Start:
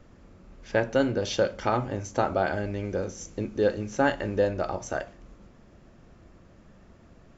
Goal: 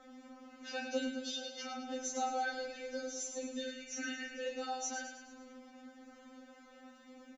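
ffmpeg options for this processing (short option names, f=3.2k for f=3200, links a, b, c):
-filter_complex "[0:a]alimiter=limit=-17dB:level=0:latency=1:release=93,asettb=1/sr,asplit=3[a][b][c];[a]atrim=end=3.614[d];[b]atrim=start=3.61:end=4.47,asetpts=PTS-STARTPTS,afade=t=in:d=0.004:c=qsin,afade=t=out:st=0.856:d=0.004:c=qsin,equalizer=f=500:t=o:w=1:g=-11,equalizer=f=1k:t=o:w=1:g=-10,equalizer=f=2k:t=o:w=1:g=9,equalizer=f=4k:t=o:w=1:g=-8[e];[c]atrim=start=4.466[f];[d][e]acrossfade=d=0.004:c1=hsin:c2=qsin[g];[g][f]acrossfade=d=0.004:c1=qsin:c2=hsin,asplit=2[h][i];[i]aecho=0:1:13|39:0.531|0.376[j];[h][j]amix=inputs=2:normalize=0,acrossover=split=170|3000[k][l][m];[l]acompressor=threshold=-50dB:ratio=2[n];[k][n][m]amix=inputs=3:normalize=0,highpass=54,asettb=1/sr,asplit=3[o][p][q];[o]atrim=end=1.064[r];[p]atrim=start=1.06:end=1.89,asetpts=PTS-STARTPTS,afade=t=in:d=0.004:c=qsin,afade=t=out:st=0.826:d=0.004:c=qsin,acompressor=threshold=-41dB:ratio=5[s];[q]atrim=start=1.886[t];[r][s]acrossfade=d=0.004:c1=hsin:c2=qsin[u];[u][t]acrossfade=d=0.004:c1=qsin:c2=hsin,asplit=2[v][w];[w]aecho=0:1:107|214|321|428|535|642:0.398|0.207|0.108|0.056|0.0291|0.0151[x];[v][x]amix=inputs=2:normalize=0,afftfilt=real='re*3.46*eq(mod(b,12),0)':imag='im*3.46*eq(mod(b,12),0)':win_size=2048:overlap=0.75,volume=3dB"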